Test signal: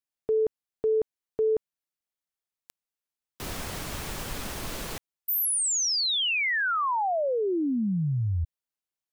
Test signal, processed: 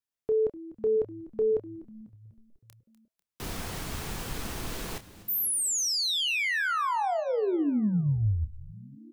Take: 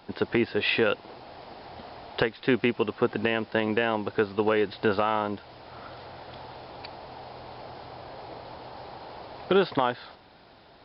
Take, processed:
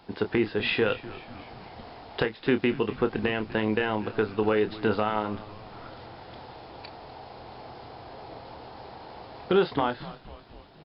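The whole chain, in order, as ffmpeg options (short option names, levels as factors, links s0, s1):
-filter_complex "[0:a]lowshelf=f=450:g=3,bandreject=f=580:w=12,asplit=2[s0][s1];[s1]adelay=28,volume=0.316[s2];[s0][s2]amix=inputs=2:normalize=0,asplit=7[s3][s4][s5][s6][s7][s8][s9];[s4]adelay=247,afreqshift=-110,volume=0.133[s10];[s5]adelay=494,afreqshift=-220,volume=0.0822[s11];[s6]adelay=741,afreqshift=-330,volume=0.0513[s12];[s7]adelay=988,afreqshift=-440,volume=0.0316[s13];[s8]adelay=1235,afreqshift=-550,volume=0.0197[s14];[s9]adelay=1482,afreqshift=-660,volume=0.0122[s15];[s3][s10][s11][s12][s13][s14][s15]amix=inputs=7:normalize=0,volume=0.75"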